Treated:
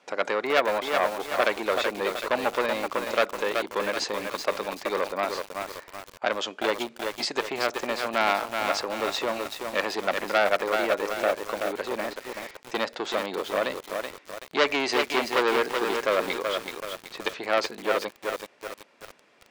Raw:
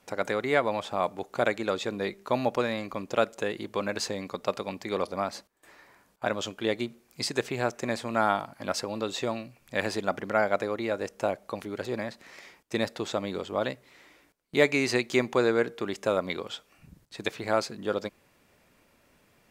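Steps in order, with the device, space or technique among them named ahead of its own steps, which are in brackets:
public-address speaker with an overloaded transformer (saturating transformer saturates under 2,500 Hz; band-pass filter 340–5,200 Hz)
feedback echo at a low word length 378 ms, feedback 55%, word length 7 bits, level −4 dB
level +5 dB

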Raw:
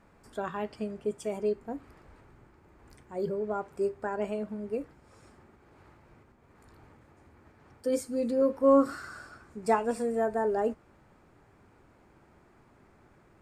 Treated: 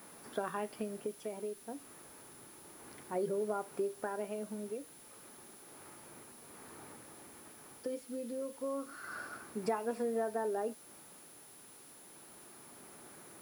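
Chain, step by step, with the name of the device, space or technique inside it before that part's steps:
medium wave at night (band-pass filter 200–4,100 Hz; downward compressor 5 to 1, threshold −38 dBFS, peak gain reduction 18.5 dB; amplitude tremolo 0.3 Hz, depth 54%; steady tone 10,000 Hz −62 dBFS; white noise bed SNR 19 dB)
level +5.5 dB

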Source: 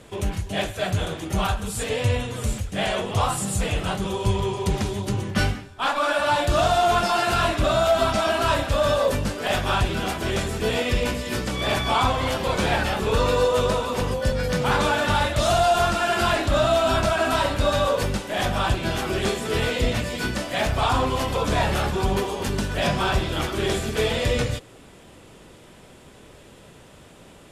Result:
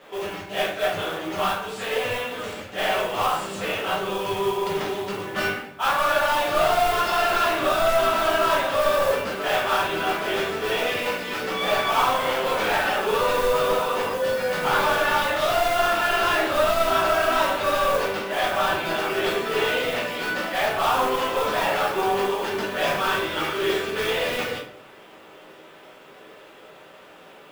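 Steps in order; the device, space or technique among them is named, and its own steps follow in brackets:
carbon microphone (band-pass filter 470–3,300 Hz; soft clipping −21.5 dBFS, distortion −12 dB; noise that follows the level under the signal 17 dB)
0:22.95–0:24.11: parametric band 720 Hz −8.5 dB 0.34 octaves
rectangular room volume 60 cubic metres, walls mixed, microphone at 1.1 metres

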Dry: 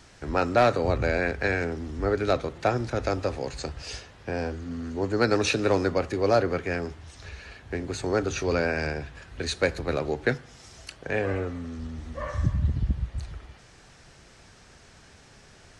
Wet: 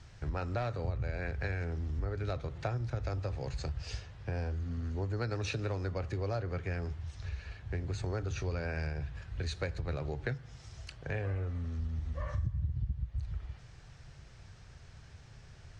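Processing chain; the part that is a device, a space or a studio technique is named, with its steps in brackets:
jukebox (low-pass filter 6,900 Hz 12 dB per octave; low shelf with overshoot 170 Hz +10 dB, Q 1.5; downward compressor 5 to 1, threshold −25 dBFS, peak gain reduction 16 dB)
level −7 dB

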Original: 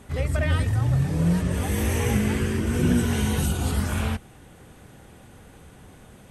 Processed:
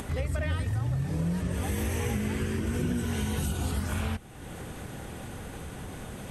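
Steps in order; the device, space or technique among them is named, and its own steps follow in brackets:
upward and downward compression (upward compression, threshold −30 dBFS; downward compressor 4 to 1, threshold −27 dBFS, peak gain reduction 9.5 dB)

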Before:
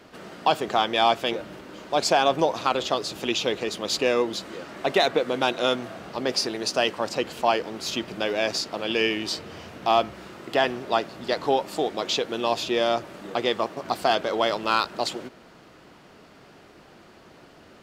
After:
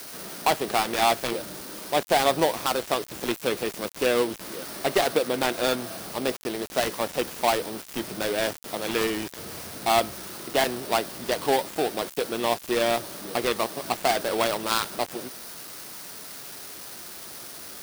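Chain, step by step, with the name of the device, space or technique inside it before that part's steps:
budget class-D amplifier (gap after every zero crossing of 0.2 ms; spike at every zero crossing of −23 dBFS)

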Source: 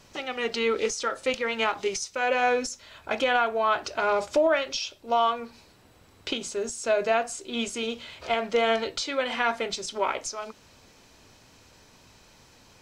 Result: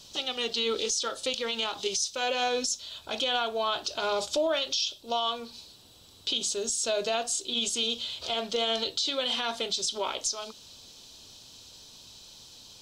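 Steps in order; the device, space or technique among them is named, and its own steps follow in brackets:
over-bright horn tweeter (high shelf with overshoot 2,700 Hz +9 dB, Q 3; brickwall limiter −16 dBFS, peak gain reduction 10 dB)
level −3 dB

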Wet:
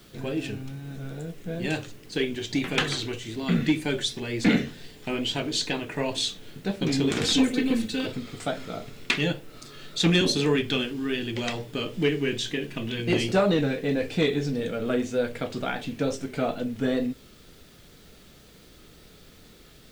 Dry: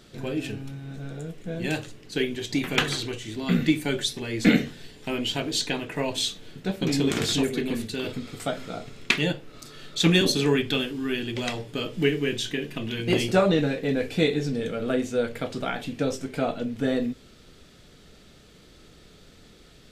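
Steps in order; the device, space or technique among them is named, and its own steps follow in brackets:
compact cassette (soft clipping −12 dBFS, distortion −20 dB; low-pass filter 8,700 Hz 12 dB per octave; tape wow and flutter; white noise bed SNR 33 dB)
0:07.24–0:08.06: comb filter 3.9 ms, depth 94%

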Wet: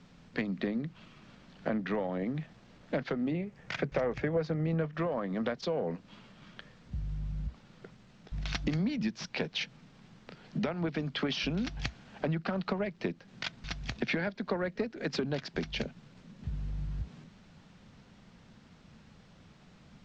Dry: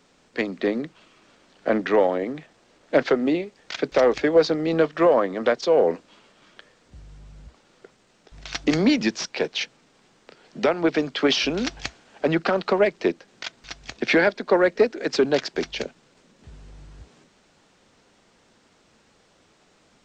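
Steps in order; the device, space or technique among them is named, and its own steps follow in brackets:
jukebox (low-pass filter 5,100 Hz 12 dB per octave; low shelf with overshoot 250 Hz +10.5 dB, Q 1.5; downward compressor 5 to 1, threshold −29 dBFS, peak gain reduction 17.5 dB)
0:03.31–0:04.94: graphic EQ with 10 bands 125 Hz +5 dB, 250 Hz −3 dB, 500 Hz +3 dB, 2,000 Hz +3 dB, 4,000 Hz −8 dB
level −1.5 dB

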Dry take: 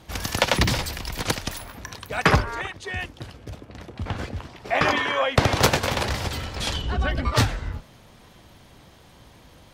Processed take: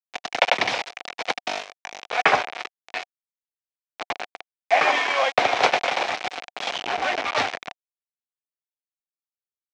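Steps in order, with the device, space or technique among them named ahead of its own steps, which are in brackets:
0:01.44–0:02.17: flutter between parallel walls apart 3.5 metres, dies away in 0.85 s
hand-held game console (bit reduction 4 bits; loudspeaker in its box 440–5,200 Hz, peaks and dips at 730 Hz +10 dB, 2,300 Hz +6 dB, 4,600 Hz −4 dB)
level −1 dB

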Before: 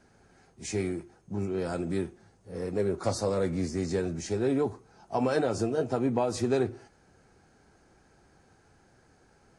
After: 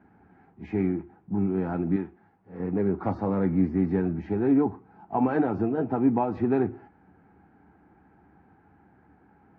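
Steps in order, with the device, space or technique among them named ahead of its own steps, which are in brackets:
bass cabinet (loudspeaker in its box 69–2,200 Hz, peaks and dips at 74 Hz +8 dB, 190 Hz +9 dB, 290 Hz +9 dB, 550 Hz −7 dB, 840 Hz +8 dB)
0:01.96–0:02.60: low-shelf EQ 420 Hz −9.5 dB

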